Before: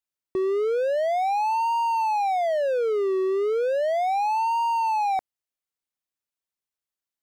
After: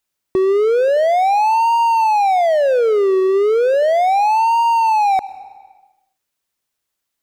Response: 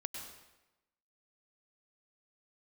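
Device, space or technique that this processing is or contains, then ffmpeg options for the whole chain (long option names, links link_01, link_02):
ducked reverb: -filter_complex "[0:a]asplit=3[link_01][link_02][link_03];[1:a]atrim=start_sample=2205[link_04];[link_02][link_04]afir=irnorm=-1:irlink=0[link_05];[link_03]apad=whole_len=318728[link_06];[link_05][link_06]sidechaincompress=threshold=-37dB:ratio=5:attack=16:release=549,volume=0.5dB[link_07];[link_01][link_07]amix=inputs=2:normalize=0,volume=8dB"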